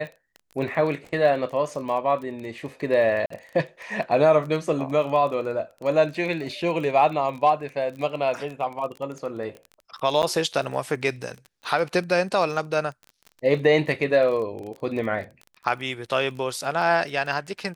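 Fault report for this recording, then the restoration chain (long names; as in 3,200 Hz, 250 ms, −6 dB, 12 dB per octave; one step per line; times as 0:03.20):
surface crackle 23 per second −32 dBFS
0:03.26–0:03.30: drop-out 44 ms
0:10.22–0:10.23: drop-out 9.4 ms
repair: click removal
repair the gap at 0:03.26, 44 ms
repair the gap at 0:10.22, 9.4 ms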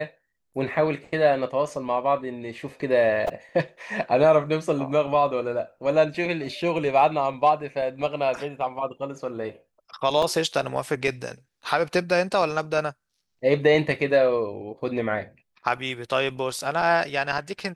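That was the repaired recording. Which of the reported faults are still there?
none of them is left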